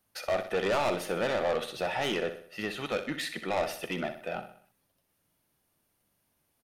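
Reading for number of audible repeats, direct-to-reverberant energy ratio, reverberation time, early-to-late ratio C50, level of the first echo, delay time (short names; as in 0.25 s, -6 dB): 4, none, none, none, -10.5 dB, 63 ms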